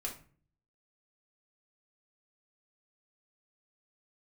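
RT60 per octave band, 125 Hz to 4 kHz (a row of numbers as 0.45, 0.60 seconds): 0.75, 0.70, 0.45, 0.40, 0.40, 0.30 seconds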